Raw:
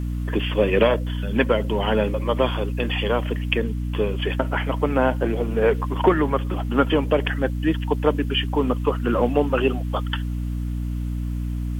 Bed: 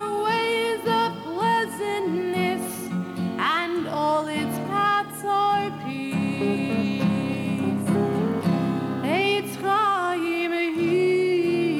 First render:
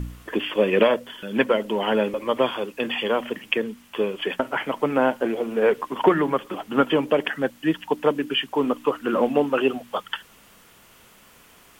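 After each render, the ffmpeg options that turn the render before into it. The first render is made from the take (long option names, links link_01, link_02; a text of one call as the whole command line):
ffmpeg -i in.wav -af "bandreject=frequency=60:width_type=h:width=4,bandreject=frequency=120:width_type=h:width=4,bandreject=frequency=180:width_type=h:width=4,bandreject=frequency=240:width_type=h:width=4,bandreject=frequency=300:width_type=h:width=4" out.wav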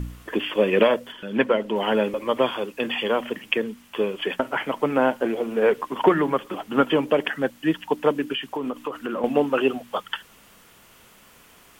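ffmpeg -i in.wav -filter_complex "[0:a]asettb=1/sr,asplit=3[link_01][link_02][link_03];[link_01]atrim=end=1.124[link_04];[link_02]atrim=start=1.12:end=1.76,asetpts=PTS-STARTPTS,afade=type=in:duration=0.004:curve=qsin,afade=type=out:start_time=0.636:duration=0.004:curve=qsin,lowpass=frequency=3700:poles=1[link_05];[link_03]atrim=start=1.756[link_06];[link_04][link_05]acrossfade=duration=0.004:curve1=hsin:curve2=qsin[link_07];[link_07][link_06]acrossfade=duration=0.004:curve1=qsin:curve2=hsin,asettb=1/sr,asplit=3[link_08][link_09][link_10];[link_08]atrim=end=8.324[link_11];[link_09]atrim=start=8.32:end=9.24,asetpts=PTS-STARTPTS,afade=type=in:duration=0.004:curve=qsin,afade=type=out:start_time=0.916:duration=0.004:curve=qsin,acompressor=threshold=-24dB:ratio=6:attack=3.2:release=140:knee=1:detection=peak[link_12];[link_10]atrim=start=9.236[link_13];[link_11][link_12]acrossfade=duration=0.004:curve1=hsin:curve2=qsin[link_14];[link_14][link_13]acrossfade=duration=0.004:curve1=qsin:curve2=hsin" out.wav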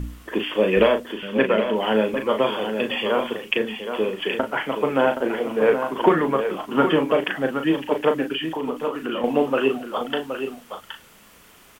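ffmpeg -i in.wav -filter_complex "[0:a]asplit=2[link_01][link_02];[link_02]adelay=37,volume=-6.5dB[link_03];[link_01][link_03]amix=inputs=2:normalize=0,aecho=1:1:771:0.398" out.wav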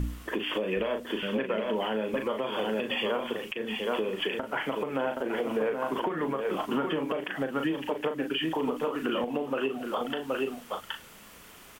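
ffmpeg -i in.wav -af "acompressor=threshold=-23dB:ratio=6,alimiter=limit=-19.5dB:level=0:latency=1:release=199" out.wav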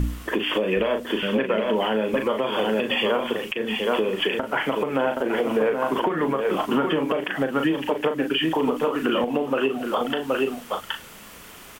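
ffmpeg -i in.wav -af "volume=7dB" out.wav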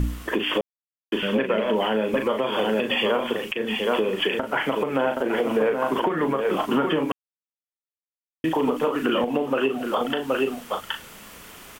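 ffmpeg -i in.wav -filter_complex "[0:a]asplit=5[link_01][link_02][link_03][link_04][link_05];[link_01]atrim=end=0.61,asetpts=PTS-STARTPTS,afade=type=out:start_time=0.606:duration=0.004:curve=hsin[link_06];[link_02]atrim=start=0.61:end=1.12,asetpts=PTS-STARTPTS,volume=0[link_07];[link_03]atrim=start=1.12:end=7.12,asetpts=PTS-STARTPTS,afade=type=in:duration=0.004:curve=hsin,afade=type=out:start_time=5.996:duration=0.004:curve=hsin[link_08];[link_04]atrim=start=7.12:end=8.44,asetpts=PTS-STARTPTS,volume=0[link_09];[link_05]atrim=start=8.44,asetpts=PTS-STARTPTS,afade=type=in:duration=0.004:curve=hsin[link_10];[link_06][link_07][link_08][link_09][link_10]concat=n=5:v=0:a=1" out.wav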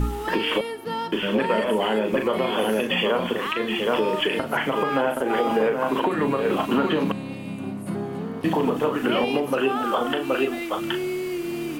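ffmpeg -i in.wav -i bed.wav -filter_complex "[1:a]volume=-7dB[link_01];[0:a][link_01]amix=inputs=2:normalize=0" out.wav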